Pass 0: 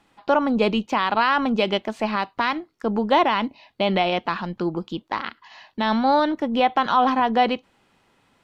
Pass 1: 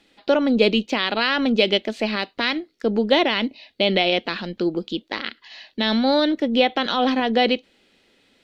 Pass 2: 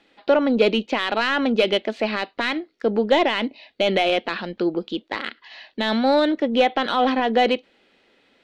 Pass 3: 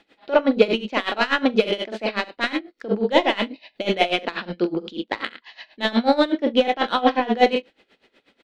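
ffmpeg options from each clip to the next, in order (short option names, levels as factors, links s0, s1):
-af "equalizer=f=125:t=o:w=1:g=-9,equalizer=f=250:t=o:w=1:g=4,equalizer=f=500:t=o:w=1:g=6,equalizer=f=1000:t=o:w=1:g=-12,equalizer=f=2000:t=o:w=1:g=4,equalizer=f=4000:t=o:w=1:g=9"
-filter_complex "[0:a]asplit=2[s0][s1];[s1]highpass=f=720:p=1,volume=3.55,asoftclip=type=tanh:threshold=0.631[s2];[s0][s2]amix=inputs=2:normalize=0,lowpass=f=1300:p=1,volume=0.501"
-af "aecho=1:1:44|68:0.447|0.266,aeval=exprs='val(0)*pow(10,-19*(0.5-0.5*cos(2*PI*8.2*n/s))/20)':c=same,volume=1.58"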